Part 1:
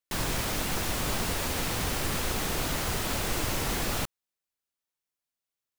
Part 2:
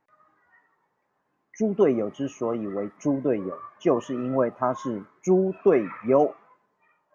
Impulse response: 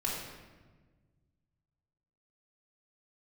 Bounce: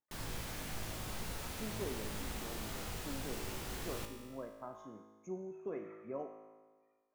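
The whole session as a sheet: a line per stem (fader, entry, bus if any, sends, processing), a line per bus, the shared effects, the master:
−3.5 dB, 0.00 s, no send, no processing
−12.0 dB, 0.00 s, no send, no processing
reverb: not used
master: low-shelf EQ 150 Hz +3 dB; tuned comb filter 54 Hz, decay 1.5 s, harmonics all, mix 80%

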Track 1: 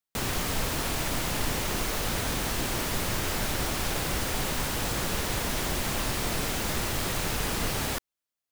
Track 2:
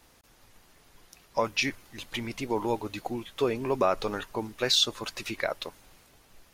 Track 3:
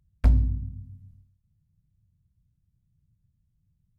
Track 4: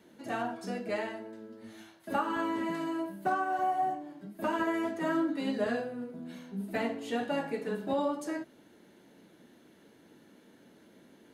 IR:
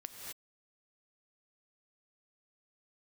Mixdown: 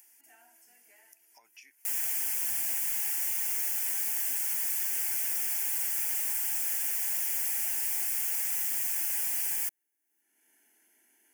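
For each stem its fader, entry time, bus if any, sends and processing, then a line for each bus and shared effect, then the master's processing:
+1.5 dB, 1.70 s, no send, comb filter 7.1 ms, depth 71%
−5.5 dB, 0.00 s, no send, downward compressor 6 to 1, threshold −33 dBFS, peak gain reduction 13.5 dB
−2.0 dB, 2.25 s, no send, no processing
−11.5 dB, 0.00 s, no send, automatic ducking −12 dB, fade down 1.85 s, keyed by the second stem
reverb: not used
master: first difference; upward compression, threshold −48 dBFS; phaser with its sweep stopped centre 790 Hz, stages 8

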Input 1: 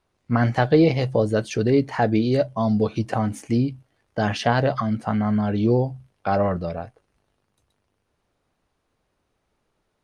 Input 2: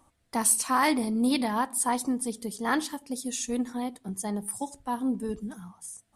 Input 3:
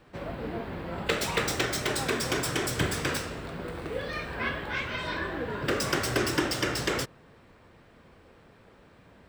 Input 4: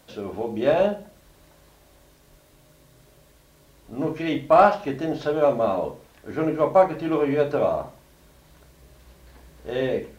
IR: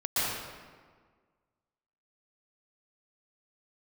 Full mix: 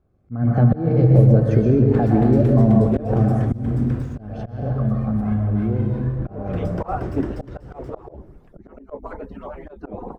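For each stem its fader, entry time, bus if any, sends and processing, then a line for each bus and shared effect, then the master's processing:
0:03.29 −2 dB → 0:03.74 −10 dB, 0.00 s, send −8.5 dB, downward compressor 6 to 1, threshold −22 dBFS, peak gain reduction 10.5 dB; notch comb filter 950 Hz
−7.5 dB, 0.70 s, no send, running median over 5 samples; elliptic band-stop filter 110–1,700 Hz
−8.5 dB, 0.85 s, send −17.5 dB, dead-zone distortion −44 dBFS
0.0 dB, 2.30 s, no send, harmonic-percussive split with one part muted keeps percussive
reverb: on, RT60 1.6 s, pre-delay 112 ms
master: parametric band 3,600 Hz −7 dB 2.2 octaves; volume swells 228 ms; spectral tilt −4.5 dB per octave

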